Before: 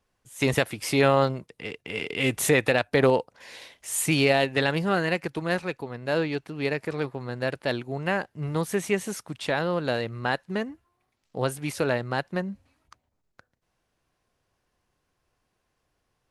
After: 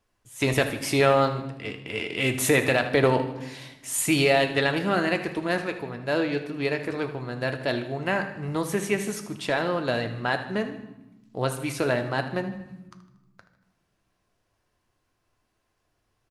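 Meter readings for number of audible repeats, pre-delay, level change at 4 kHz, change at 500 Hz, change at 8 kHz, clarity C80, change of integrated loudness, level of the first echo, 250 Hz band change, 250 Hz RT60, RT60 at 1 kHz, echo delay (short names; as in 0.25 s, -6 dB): 3, 3 ms, +1.0 dB, +0.5 dB, +1.0 dB, 13.0 dB, +0.5 dB, -13.5 dB, +1.0 dB, 1.7 s, 0.95 s, 78 ms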